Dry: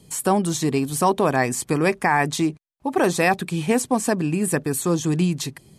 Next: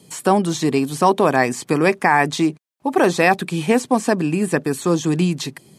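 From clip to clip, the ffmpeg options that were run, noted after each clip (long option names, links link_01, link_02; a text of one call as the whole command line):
ffmpeg -i in.wav -filter_complex "[0:a]highpass=160,acrossover=split=5800[link_01][link_02];[link_02]acompressor=threshold=-39dB:ratio=4:attack=1:release=60[link_03];[link_01][link_03]amix=inputs=2:normalize=0,volume=4dB" out.wav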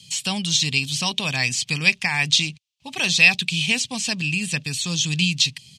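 ffmpeg -i in.wav -af "firequalizer=gain_entry='entry(100,0);entry(340,-28);entry(510,-23);entry(900,-19);entry(1400,-19);entry(2700,9);entry(6000,5);entry(11000,-10)':delay=0.05:min_phase=1,volume=4dB" out.wav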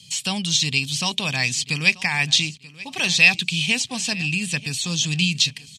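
ffmpeg -i in.wav -af "aecho=1:1:935|1870:0.106|0.0307" out.wav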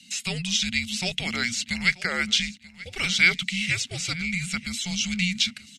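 ffmpeg -i in.wav -af "afreqshift=-360,volume=-4.5dB" out.wav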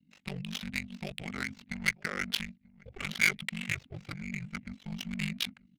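ffmpeg -i in.wav -af "aeval=exprs='val(0)*sin(2*PI*24*n/s)':channel_layout=same,adynamicsmooth=sensitivity=2:basefreq=570,volume=-4.5dB" out.wav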